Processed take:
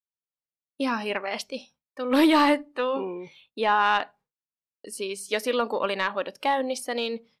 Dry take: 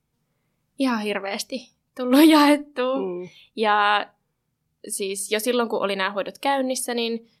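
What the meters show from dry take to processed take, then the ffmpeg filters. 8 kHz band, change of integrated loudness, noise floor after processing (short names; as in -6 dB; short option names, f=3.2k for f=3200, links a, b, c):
-9.0 dB, -3.5 dB, under -85 dBFS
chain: -filter_complex "[0:a]agate=range=-33dB:threshold=-45dB:ratio=3:detection=peak,asplit=2[a][b];[b]highpass=f=720:p=1,volume=9dB,asoftclip=type=tanh:threshold=-4.5dB[c];[a][c]amix=inputs=2:normalize=0,lowpass=f=2.5k:p=1,volume=-6dB,volume=-4dB"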